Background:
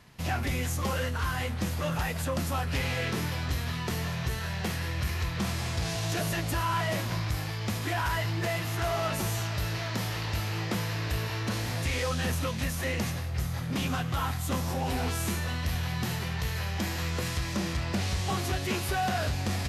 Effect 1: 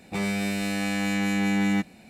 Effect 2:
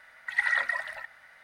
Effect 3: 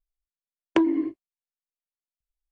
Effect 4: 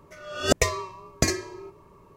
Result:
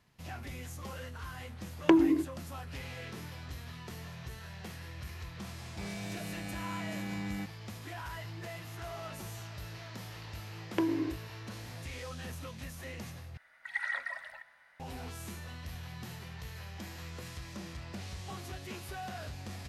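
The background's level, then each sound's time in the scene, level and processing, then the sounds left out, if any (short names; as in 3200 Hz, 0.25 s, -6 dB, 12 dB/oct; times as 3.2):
background -13 dB
1.13 add 3 -1.5 dB
5.64 add 1 -15 dB
10.02 add 3 -10.5 dB + per-bin compression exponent 0.6
13.37 replace with 2 -3.5 dB + resonator 67 Hz, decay 2 s, mix 50%
not used: 4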